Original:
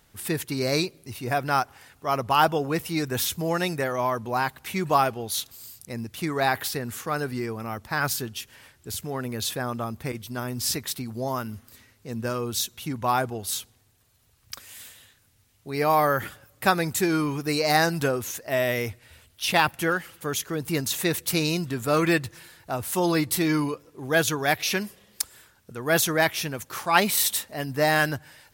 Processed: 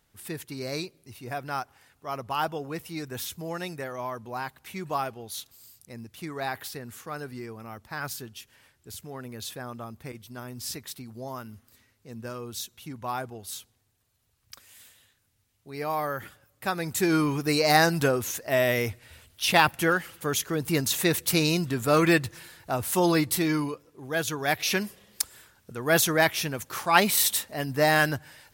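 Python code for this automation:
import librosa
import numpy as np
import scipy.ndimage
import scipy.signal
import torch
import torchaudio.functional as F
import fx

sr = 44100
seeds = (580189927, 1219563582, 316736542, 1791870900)

y = fx.gain(x, sr, db=fx.line((16.67, -8.5), (17.13, 1.0), (23.05, 1.0), (24.14, -7.0), (24.73, 0.0)))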